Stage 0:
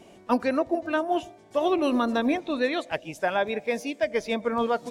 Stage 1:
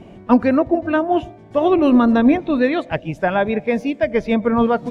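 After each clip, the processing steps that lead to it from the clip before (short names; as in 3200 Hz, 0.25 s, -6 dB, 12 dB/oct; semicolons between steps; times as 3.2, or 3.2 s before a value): tone controls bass +12 dB, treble -15 dB; gain +6.5 dB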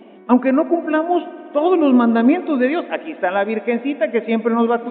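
reverb RT60 3.1 s, pre-delay 59 ms, DRR 15 dB; downsampling 8000 Hz; brick-wall FIR high-pass 200 Hz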